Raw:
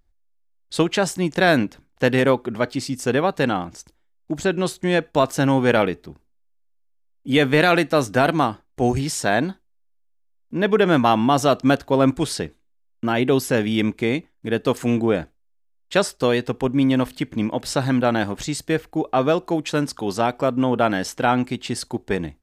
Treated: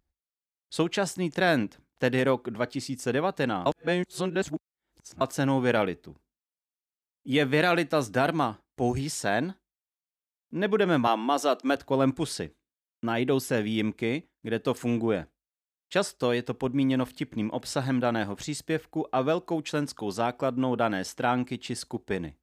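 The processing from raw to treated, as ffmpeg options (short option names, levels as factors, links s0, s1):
-filter_complex "[0:a]asettb=1/sr,asplit=3[s0][s1][s2];[s0]atrim=end=11.074[s3];[s1]atrim=start=11.07:end=11.76,asetpts=PTS-STARTPTS,afade=t=in:d=0.004:c=qsin,afade=t=out:st=0.686:d=0.004:c=qsin,highpass=f=270:w=0.5412,highpass=f=270:w=1.3066[s4];[s2]atrim=start=11.756[s5];[s3][s4]acrossfade=d=0.004:c1=hsin:c2=qsin[s6];[s6][s5]acrossfade=d=0.004:c1=qsin:c2=hsin,asplit=3[s7][s8][s9];[s7]atrim=end=3.662[s10];[s8]atrim=start=3.658:end=5.212,asetpts=PTS-STARTPTS,areverse[s11];[s9]atrim=start=5.208[s12];[s10][s11]acrossfade=d=0.004:c1=hsin:c2=hsin[s13];[s13][s12]acrossfade=d=0.004:c1=hsin:c2=hsin,highpass=53,volume=0.447"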